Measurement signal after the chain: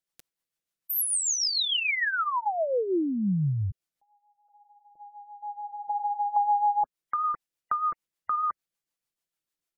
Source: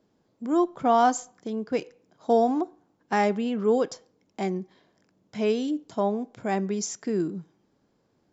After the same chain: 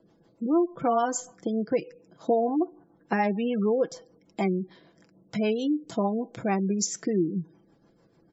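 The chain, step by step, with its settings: comb 6 ms, depth 43%; rotary cabinet horn 6.7 Hz; compression 2.5:1, threshold -33 dBFS; spectral gate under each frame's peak -30 dB strong; trim +8 dB

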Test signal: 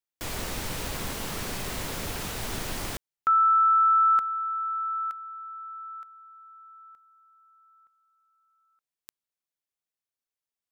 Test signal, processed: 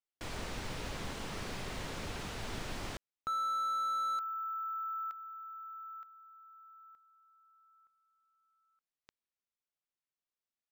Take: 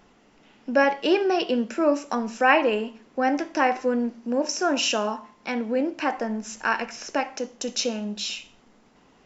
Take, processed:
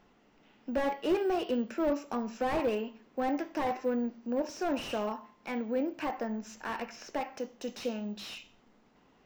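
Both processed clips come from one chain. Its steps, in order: dynamic bell 1.5 kHz, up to -5 dB, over -37 dBFS, Q 4.7; careless resampling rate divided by 2×, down none, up zero stuff; distance through air 73 m; slew-rate limiter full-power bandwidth 64 Hz; trim -6.5 dB

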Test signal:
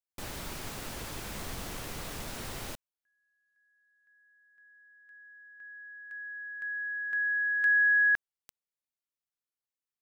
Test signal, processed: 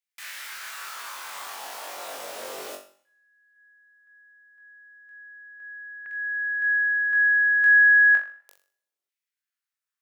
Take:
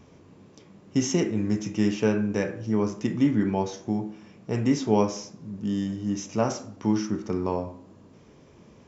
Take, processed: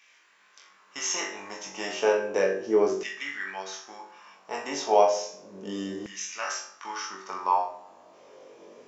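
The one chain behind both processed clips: flutter echo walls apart 3.6 m, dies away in 0.37 s; LFO high-pass saw down 0.33 Hz 370–2100 Hz; Schroeder reverb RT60 0.69 s, combs from 32 ms, DRR 17 dB

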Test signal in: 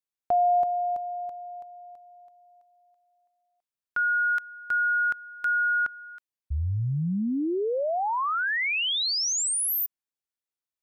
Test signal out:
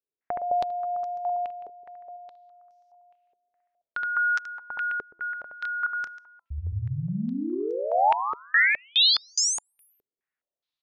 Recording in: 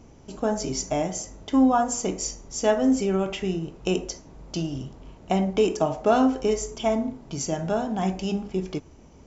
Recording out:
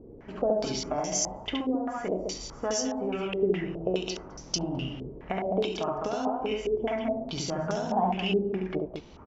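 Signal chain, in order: bass shelf 390 Hz -4 dB; de-hum 338.3 Hz, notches 4; compression 10:1, threshold -30 dBFS; loudspeakers at several distances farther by 24 m -2 dB, 72 m -5 dB; step-sequenced low-pass 4.8 Hz 420–5700 Hz

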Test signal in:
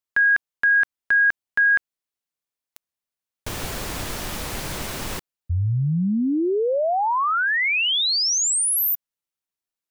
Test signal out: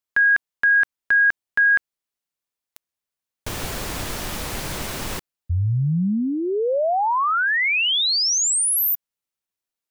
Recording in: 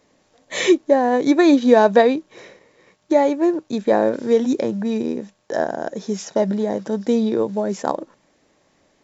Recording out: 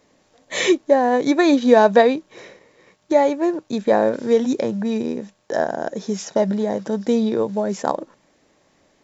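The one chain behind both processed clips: dynamic bell 320 Hz, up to -4 dB, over -29 dBFS, Q 2.1; trim +1 dB

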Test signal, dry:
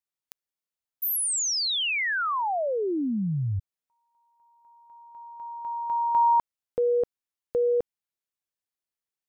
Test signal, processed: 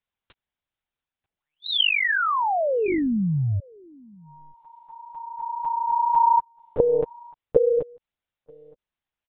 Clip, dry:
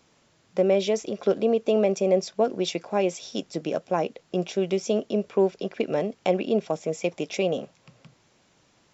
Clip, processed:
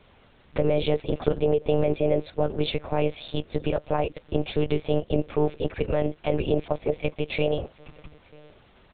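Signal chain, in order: in parallel at +2.5 dB: compression 8:1, threshold -32 dBFS; on the sum: peak limiter -14 dBFS; echo from a far wall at 160 m, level -25 dB; monotone LPC vocoder at 8 kHz 150 Hz

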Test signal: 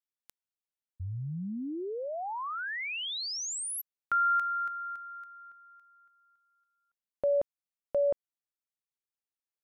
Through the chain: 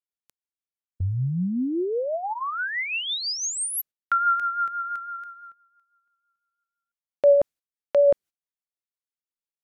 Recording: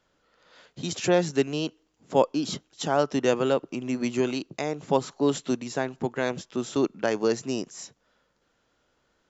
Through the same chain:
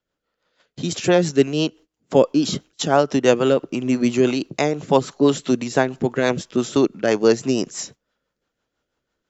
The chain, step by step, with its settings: gate -50 dBFS, range -17 dB; in parallel at 0 dB: gain riding within 5 dB 0.5 s; on the sum: rotary cabinet horn 6 Hz; trim +3.5 dB

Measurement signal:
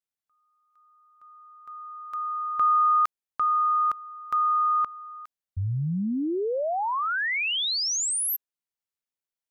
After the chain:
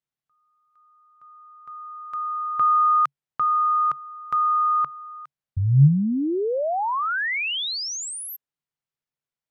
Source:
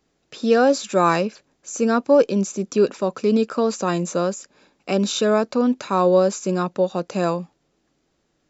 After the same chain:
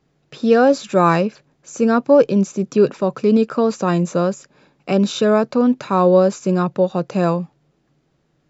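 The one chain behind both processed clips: low-pass 3.1 kHz 6 dB/octave; peaking EQ 140 Hz +13.5 dB 0.39 oct; trim +3 dB

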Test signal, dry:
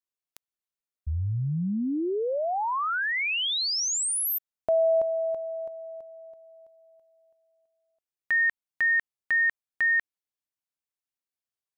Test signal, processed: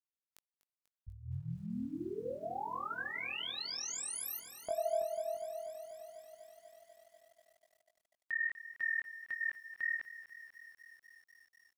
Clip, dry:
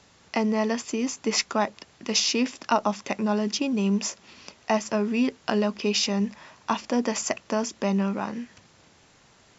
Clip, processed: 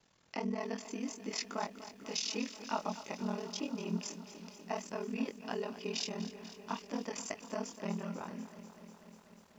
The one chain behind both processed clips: chorus 1.6 Hz, delay 16.5 ms, depth 4.8 ms; ring modulator 20 Hz; bit-crushed delay 245 ms, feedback 80%, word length 9-bit, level -14 dB; trim -7.5 dB

